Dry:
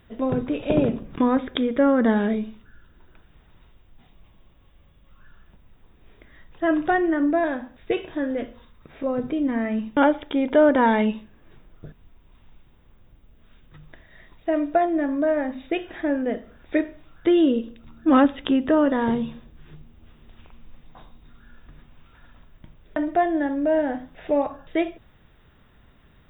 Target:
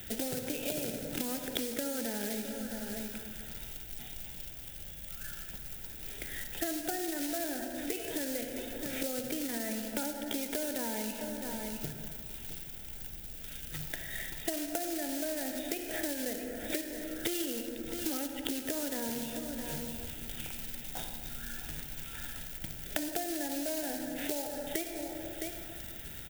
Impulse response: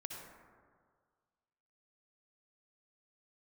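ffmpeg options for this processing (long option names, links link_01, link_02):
-filter_complex "[0:a]acrossover=split=98|430|1000[link_01][link_02][link_03][link_04];[link_01]acompressor=threshold=-49dB:ratio=4[link_05];[link_02]acompressor=threshold=-32dB:ratio=4[link_06];[link_03]acompressor=threshold=-34dB:ratio=4[link_07];[link_04]acompressor=threshold=-43dB:ratio=4[link_08];[link_05][link_06][link_07][link_08]amix=inputs=4:normalize=0,acrusher=bits=3:mode=log:mix=0:aa=0.000001,asuperstop=centerf=1100:order=4:qfactor=2.9,aecho=1:1:662:0.168,asplit=2[link_09][link_10];[1:a]atrim=start_sample=2205[link_11];[link_10][link_11]afir=irnorm=-1:irlink=0,volume=1.5dB[link_12];[link_09][link_12]amix=inputs=2:normalize=0,acompressor=threshold=-36dB:ratio=6,crystalizer=i=5:c=0"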